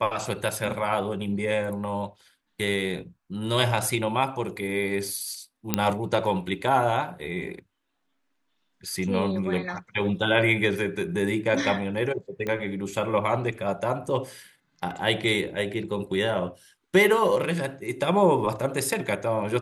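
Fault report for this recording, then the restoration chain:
0:05.74: click −5 dBFS
0:12.47: click −18 dBFS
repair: click removal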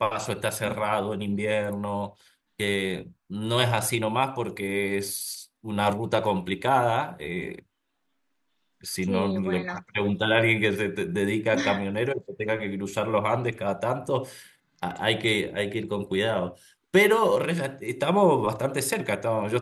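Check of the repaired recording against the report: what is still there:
none of them is left

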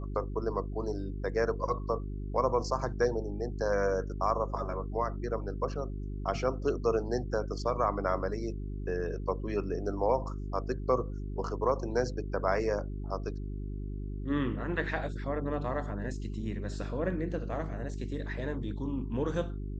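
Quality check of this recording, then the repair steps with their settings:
mains hum 50 Hz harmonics 8 −37 dBFS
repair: hum removal 50 Hz, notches 8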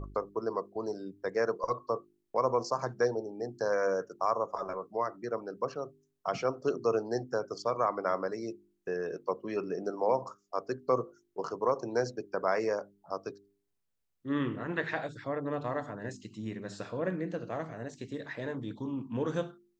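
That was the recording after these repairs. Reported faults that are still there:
none of them is left

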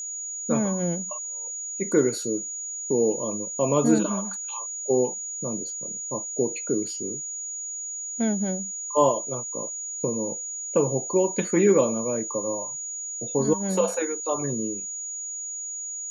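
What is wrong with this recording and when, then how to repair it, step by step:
whistle 6,800 Hz −31 dBFS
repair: notch filter 6,800 Hz, Q 30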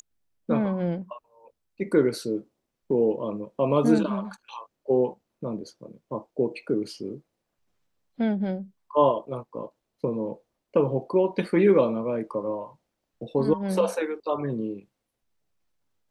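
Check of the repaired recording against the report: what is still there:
none of them is left

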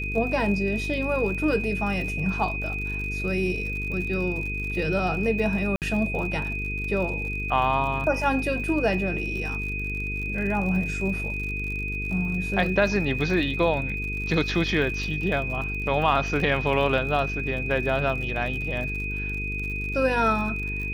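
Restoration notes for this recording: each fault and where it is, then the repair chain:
mains buzz 50 Hz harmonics 9 −32 dBFS
surface crackle 59 per second −33 dBFS
whistle 2,500 Hz −30 dBFS
0:05.76–0:05.82: drop-out 58 ms
0:16.40: drop-out 2.1 ms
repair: click removal
hum removal 50 Hz, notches 9
notch filter 2,500 Hz, Q 30
repair the gap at 0:05.76, 58 ms
repair the gap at 0:16.40, 2.1 ms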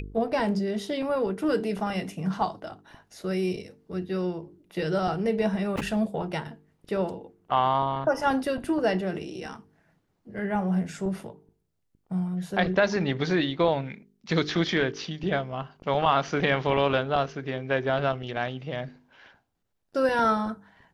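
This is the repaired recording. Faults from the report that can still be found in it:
none of them is left

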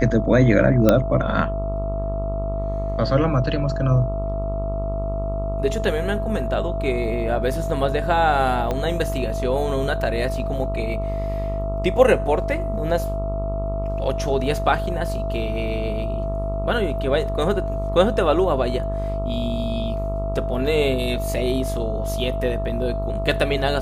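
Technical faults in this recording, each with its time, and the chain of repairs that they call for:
mains buzz 50 Hz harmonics 27 −26 dBFS
whistle 660 Hz −27 dBFS
0:00.89: click −3 dBFS
0:08.71: click −12 dBFS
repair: click removal
notch filter 660 Hz, Q 30
hum removal 50 Hz, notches 27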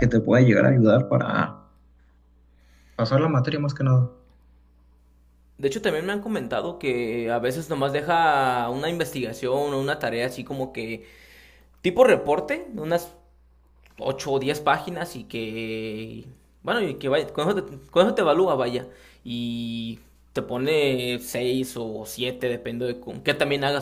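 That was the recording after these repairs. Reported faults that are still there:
0:08.71: click

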